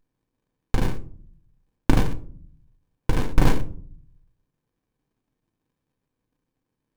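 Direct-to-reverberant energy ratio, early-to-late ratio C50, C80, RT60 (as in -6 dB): 7.5 dB, 16.5 dB, 21.0 dB, 0.50 s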